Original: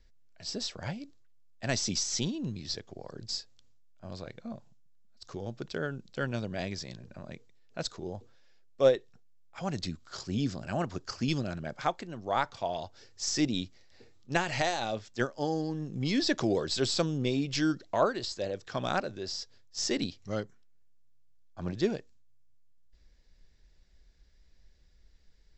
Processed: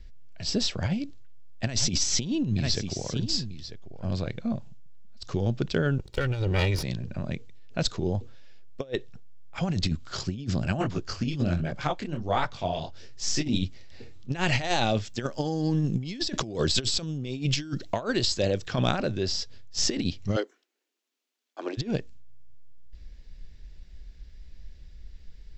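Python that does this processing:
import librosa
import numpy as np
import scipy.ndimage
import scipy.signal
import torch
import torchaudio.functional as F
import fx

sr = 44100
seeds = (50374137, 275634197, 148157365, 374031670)

y = fx.echo_single(x, sr, ms=945, db=-13.5, at=(1.79, 4.18), fade=0.02)
y = fx.lower_of_two(y, sr, delay_ms=2.1, at=(5.98, 6.83))
y = fx.detune_double(y, sr, cents=fx.line((10.79, 38.0), (13.64, 58.0)), at=(10.79, 13.64), fade=0.02)
y = fx.high_shelf(y, sr, hz=6900.0, db=10.0, at=(14.95, 18.68))
y = fx.steep_highpass(y, sr, hz=300.0, slope=48, at=(20.35, 21.77), fade=0.02)
y = fx.low_shelf(y, sr, hz=260.0, db=12.0)
y = fx.over_compress(y, sr, threshold_db=-28.0, ratio=-0.5)
y = fx.peak_eq(y, sr, hz=2800.0, db=6.0, octaves=0.99)
y = y * librosa.db_to_amplitude(2.5)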